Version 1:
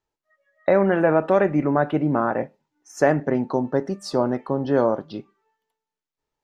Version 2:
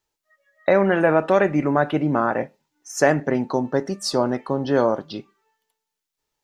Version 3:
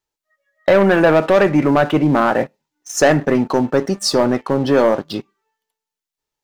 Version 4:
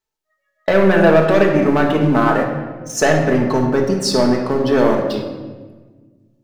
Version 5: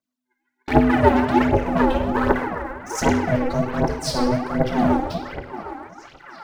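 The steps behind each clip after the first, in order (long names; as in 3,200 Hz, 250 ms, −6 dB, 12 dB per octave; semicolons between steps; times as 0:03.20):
high-shelf EQ 2,300 Hz +10.5 dB
leveller curve on the samples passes 2
rectangular room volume 1,300 cubic metres, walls mixed, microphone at 1.5 metres; level −2.5 dB
echo through a band-pass that steps 757 ms, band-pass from 840 Hz, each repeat 0.7 octaves, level −6 dB; phase shifter 1.3 Hz, delay 3.9 ms, feedback 77%; ring modulation 250 Hz; level −7 dB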